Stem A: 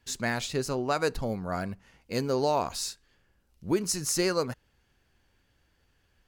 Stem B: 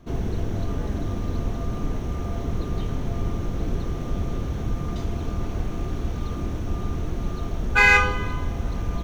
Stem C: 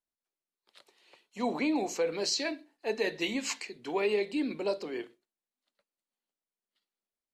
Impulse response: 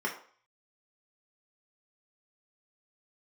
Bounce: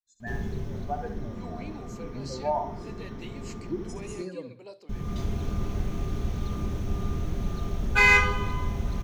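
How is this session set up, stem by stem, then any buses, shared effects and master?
-3.5 dB, 0.00 s, no send, echo send -8 dB, comb 1.2 ms, depth 48%; spectral contrast expander 2.5:1
-2.5 dB, 0.20 s, muted 4.22–4.89 s, send -13 dB, no echo send, auto duck -15 dB, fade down 1.55 s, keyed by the first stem
-14.5 dB, 0.00 s, no send, echo send -22.5 dB, none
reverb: on, RT60 0.50 s, pre-delay 3 ms
echo: feedback delay 66 ms, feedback 43%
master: treble shelf 6.6 kHz +4 dB

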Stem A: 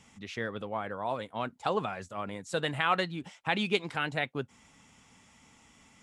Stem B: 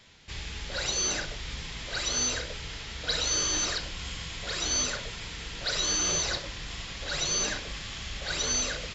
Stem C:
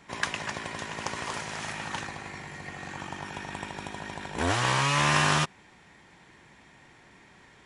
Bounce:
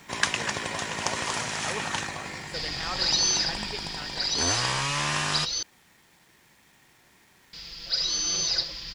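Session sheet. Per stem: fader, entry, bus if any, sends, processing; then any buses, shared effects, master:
-11.5 dB, 0.00 s, no send, none
-7.0 dB, 2.25 s, muted 5.63–7.53 s, no send, resonant low-pass 4.9 kHz, resonance Q 9.4; comb 5.9 ms
-2.5 dB, 0.00 s, no send, peaking EQ 6.1 kHz +6.5 dB 2.2 oct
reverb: none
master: gain riding within 5 dB 2 s; bit crusher 10-bit

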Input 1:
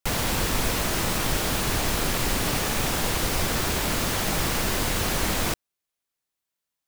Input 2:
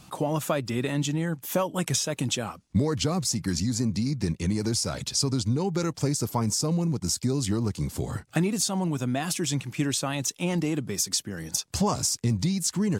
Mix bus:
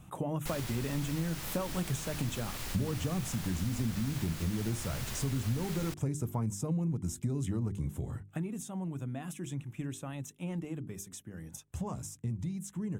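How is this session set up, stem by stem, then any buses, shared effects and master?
-6.5 dB, 0.40 s, no send, tilt shelf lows -5 dB, about 810 Hz; auto duck -11 dB, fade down 0.65 s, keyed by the second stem
7.78 s -7 dB -> 8.23 s -14.5 dB, 0.00 s, no send, peaking EQ 4.9 kHz -13.5 dB 0.64 oct; band-stop 4.4 kHz, Q 6.3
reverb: none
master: bass shelf 220 Hz +11 dB; hum notches 50/100/150/200/250/300/350/400 Hz; compression 2:1, threshold -33 dBFS, peak gain reduction 7.5 dB

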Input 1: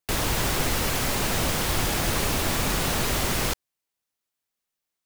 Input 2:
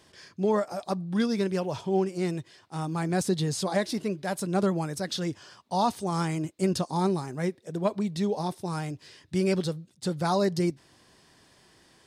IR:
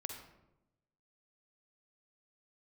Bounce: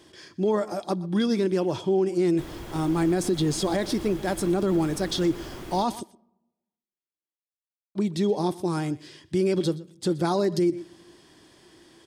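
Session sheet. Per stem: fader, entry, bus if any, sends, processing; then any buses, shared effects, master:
-14.0 dB, 2.30 s, no send, echo send -12.5 dB, treble shelf 2.3 kHz -10 dB
+1.5 dB, 0.00 s, muted 6.03–7.95 s, send -21.5 dB, echo send -20.5 dB, none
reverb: on, RT60 0.95 s, pre-delay 43 ms
echo: delay 123 ms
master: small resonant body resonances 330/3300 Hz, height 12 dB, ringing for 45 ms; peak limiter -15.5 dBFS, peak gain reduction 7.5 dB

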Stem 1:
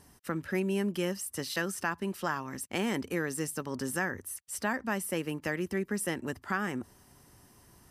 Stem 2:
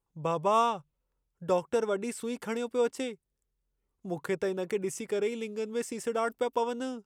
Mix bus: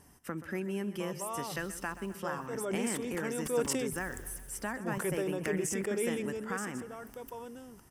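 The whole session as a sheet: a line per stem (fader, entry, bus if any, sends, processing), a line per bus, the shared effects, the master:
-1.0 dB, 0.00 s, no send, echo send -14.5 dB, compression 1.5:1, threshold -39 dBFS, peak gain reduction 5.5 dB
2.52 s -15 dB -> 2.74 s -4.5 dB -> 6.30 s -4.5 dB -> 6.75 s -16.5 dB, 0.75 s, no send, no echo send, decay stretcher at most 24 dB/s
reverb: none
echo: feedback delay 129 ms, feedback 59%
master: peaking EQ 4.1 kHz -8.5 dB 0.39 oct

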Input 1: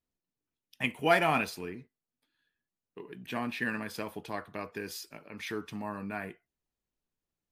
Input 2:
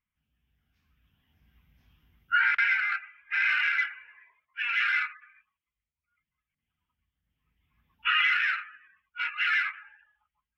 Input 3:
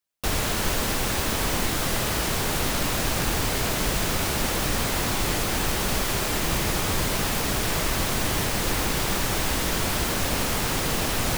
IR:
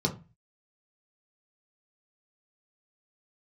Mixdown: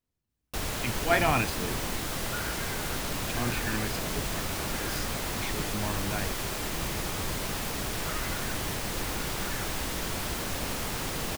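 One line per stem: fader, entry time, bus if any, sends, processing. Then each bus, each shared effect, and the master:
+1.5 dB, 0.00 s, no send, octave divider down 1 oct, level +2 dB; slow attack 107 ms
-7.5 dB, 0.00 s, no send, low-pass 1 kHz
-7.5 dB, 0.30 s, no send, none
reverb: none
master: none

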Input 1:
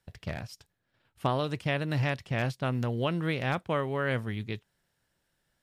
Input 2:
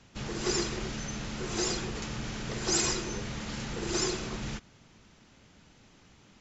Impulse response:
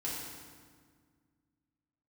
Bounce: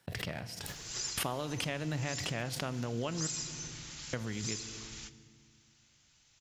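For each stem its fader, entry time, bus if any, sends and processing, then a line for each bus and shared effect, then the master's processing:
+1.0 dB, 0.00 s, muted 3.27–4.13 s, send -15 dB, expander -58 dBFS; high-pass 120 Hz; swell ahead of each attack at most 30 dB/s
-15.0 dB, 0.50 s, send -14.5 dB, FFT filter 140 Hz 0 dB, 210 Hz -13 dB, 6.6 kHz +15 dB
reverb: on, RT60 1.8 s, pre-delay 3 ms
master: compression 2.5:1, threshold -36 dBFS, peak gain reduction 11 dB

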